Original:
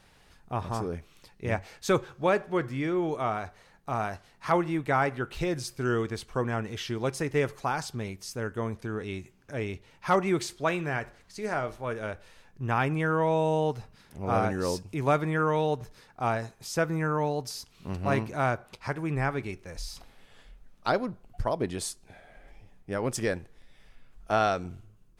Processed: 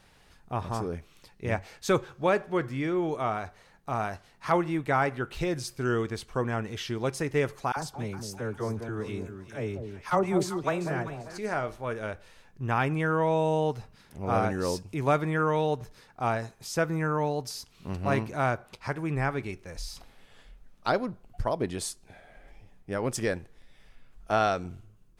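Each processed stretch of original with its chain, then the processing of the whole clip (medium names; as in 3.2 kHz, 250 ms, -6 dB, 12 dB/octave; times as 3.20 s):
7.72–11.38 s: dynamic bell 2.6 kHz, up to -6 dB, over -45 dBFS, Q 0.76 + phase dispersion lows, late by 45 ms, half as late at 950 Hz + echo whose repeats swap between lows and highs 196 ms, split 840 Hz, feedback 54%, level -6.5 dB
whole clip: none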